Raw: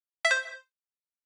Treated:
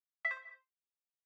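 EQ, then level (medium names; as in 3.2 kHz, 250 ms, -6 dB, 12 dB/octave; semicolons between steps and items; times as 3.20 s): two resonant band-passes 1.5 kHz, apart 0.73 oct; tilt EQ -2.5 dB/octave; -5.5 dB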